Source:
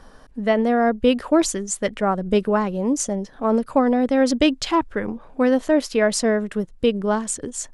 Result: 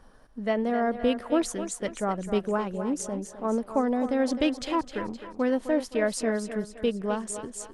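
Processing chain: 5.88–6.50 s: gate with hold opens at -25 dBFS; thinning echo 259 ms, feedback 48%, high-pass 280 Hz, level -9.5 dB; trim -7.5 dB; Opus 32 kbps 48 kHz

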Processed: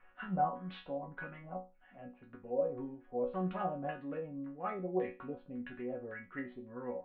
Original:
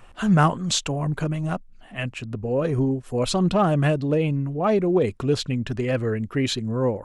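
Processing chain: LFO low-pass square 1.8 Hz 680–1800 Hz; inverse Chebyshev low-pass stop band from 6.7 kHz, stop band 40 dB; tilt EQ +1.5 dB/octave; chord resonator F#3 sus4, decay 0.3 s

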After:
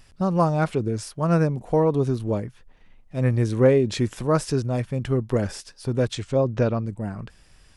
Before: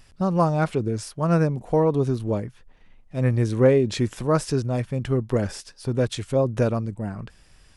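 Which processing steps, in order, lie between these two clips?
6.11–6.85 s: low-pass 9.1 kHz -> 4.4 kHz 24 dB/octave

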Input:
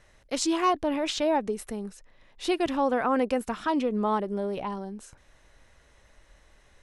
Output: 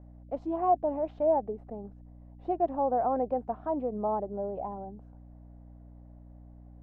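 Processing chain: hum 60 Hz, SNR 12 dB; resonant low-pass 720 Hz, resonance Q 4.9; trim -9 dB

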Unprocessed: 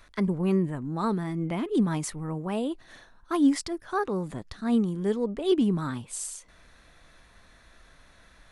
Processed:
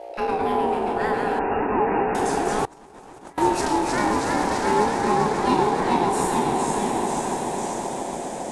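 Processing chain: spectral sustain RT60 0.61 s; echo with a slow build-up 137 ms, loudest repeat 5, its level -10 dB; hum 60 Hz, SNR 12 dB; 4.08–4.84 s: comb 5.1 ms; ring modulator 630 Hz; ever faster or slower copies 96 ms, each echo -1 st, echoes 3; 1.39–2.15 s: Chebyshev low-pass 2.8 kHz, order 10; 2.65–3.38 s: compressor with a negative ratio -40 dBFS, ratio -0.5; trim +2 dB

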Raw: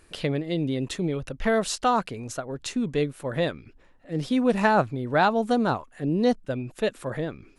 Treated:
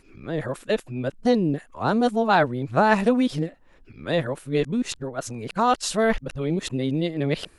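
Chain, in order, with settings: reverse the whole clip; trim +2 dB

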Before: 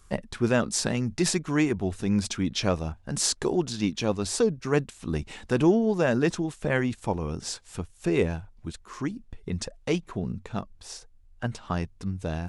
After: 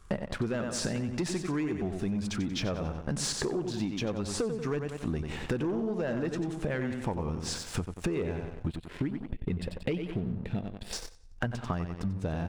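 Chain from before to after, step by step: 8.68–10.93 s: static phaser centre 2.7 kHz, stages 4; feedback delay 92 ms, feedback 37%, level -8.5 dB; waveshaping leveller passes 2; treble shelf 3.8 kHz -9.5 dB; compression 16:1, threshold -34 dBFS, peak gain reduction 22 dB; trim +5.5 dB

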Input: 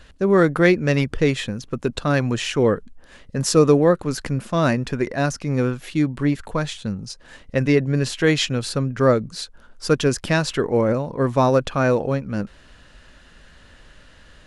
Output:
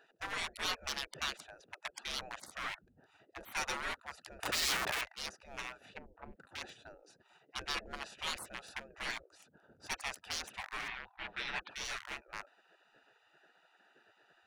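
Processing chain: local Wiener filter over 41 samples; 4.43–5.01 s: power-law waveshaper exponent 0.35; spectral gate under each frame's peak -30 dB weak; 10.88–11.70 s: inverse Chebyshev low-pass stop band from 8.7 kHz, stop band 50 dB; saturation -29.5 dBFS, distortion -10 dB; 5.77–6.40 s: low-pass that closes with the level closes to 340 Hz, closed at -44 dBFS; trim +3.5 dB

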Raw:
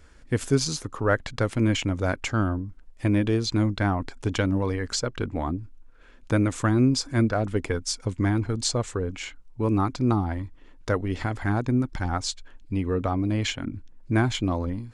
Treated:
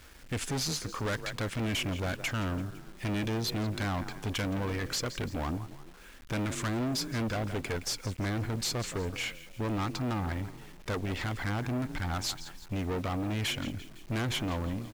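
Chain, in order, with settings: peaking EQ 2.6 kHz +6.5 dB 1.7 oct; frequency-shifting echo 169 ms, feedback 40%, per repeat +33 Hz, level -18 dB; valve stage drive 29 dB, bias 0.45; resampled via 32 kHz; bit crusher 9-bit

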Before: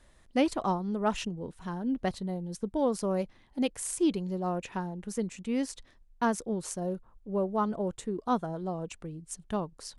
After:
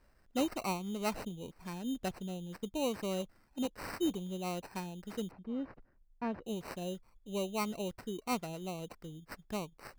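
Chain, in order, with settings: sample-and-hold 13×; 5.31–6.45 s: tape spacing loss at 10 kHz 45 dB; trim -6.5 dB

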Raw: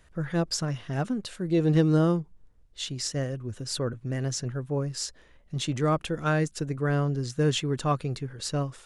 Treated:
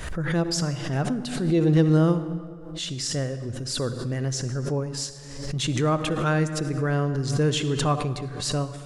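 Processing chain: on a send at -11 dB: reverberation RT60 1.7 s, pre-delay 56 ms; on the sum: swell ahead of each attack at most 52 dB/s; trim +1.5 dB

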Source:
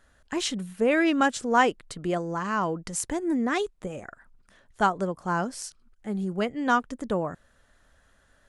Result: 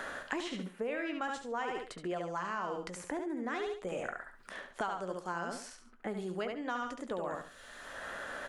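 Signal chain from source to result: bass shelf 65 Hz +11 dB; doubling 17 ms -13.5 dB; on a send: feedback delay 70 ms, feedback 25%, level -5.5 dB; on the sum: reverse; compression 4:1, threshold -34 dBFS, peak gain reduction 16.5 dB; reverse; tone controls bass -14 dB, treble -7 dB; three bands compressed up and down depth 100%

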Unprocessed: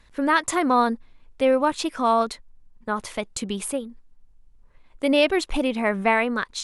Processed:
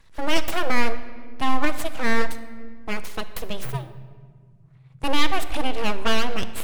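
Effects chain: full-wave rectifier; 3.65–5.04 s: ring modulator 130 Hz; simulated room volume 2400 m³, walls mixed, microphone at 0.63 m

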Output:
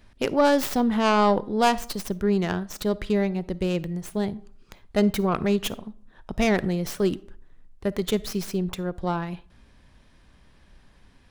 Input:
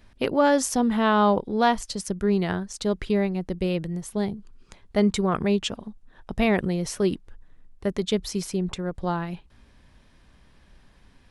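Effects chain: tracing distortion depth 0.37 ms; algorithmic reverb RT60 0.53 s, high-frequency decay 0.6×, pre-delay 10 ms, DRR 19 dB

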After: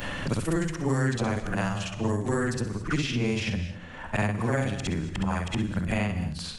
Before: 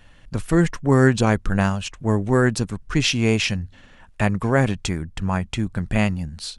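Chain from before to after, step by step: short-time spectra conjugated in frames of 136 ms; gated-style reverb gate 240 ms flat, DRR 11.5 dB; three bands compressed up and down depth 100%; trim -4.5 dB

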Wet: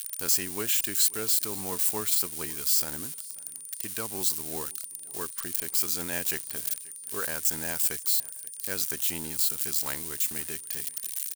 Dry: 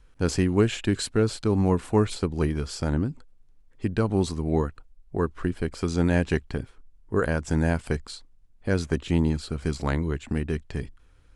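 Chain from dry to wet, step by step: zero-crossing glitches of -25.5 dBFS; whistle 9.3 kHz -47 dBFS; tilt EQ +4.5 dB/octave; on a send: feedback delay 535 ms, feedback 39%, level -23.5 dB; on the sum: trim -8 dB

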